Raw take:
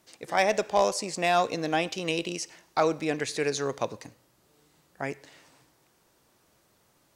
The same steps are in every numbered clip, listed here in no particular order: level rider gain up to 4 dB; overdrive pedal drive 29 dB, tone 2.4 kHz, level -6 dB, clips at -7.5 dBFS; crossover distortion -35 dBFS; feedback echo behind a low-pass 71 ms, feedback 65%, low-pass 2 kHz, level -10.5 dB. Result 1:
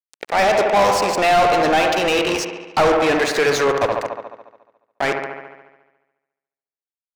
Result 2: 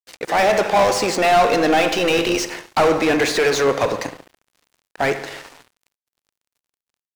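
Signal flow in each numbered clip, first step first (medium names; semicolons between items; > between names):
level rider > crossover distortion > feedback echo behind a low-pass > overdrive pedal; level rider > overdrive pedal > feedback echo behind a low-pass > crossover distortion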